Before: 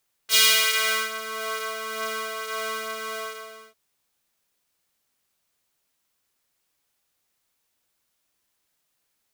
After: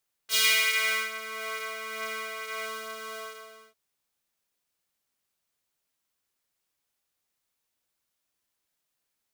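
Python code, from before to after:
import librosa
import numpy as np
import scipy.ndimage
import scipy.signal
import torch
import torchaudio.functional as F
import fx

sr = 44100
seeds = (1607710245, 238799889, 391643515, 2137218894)

y = fx.peak_eq(x, sr, hz=2200.0, db=10.0, octaves=0.35, at=(0.44, 2.66))
y = F.gain(torch.from_numpy(y), -6.5).numpy()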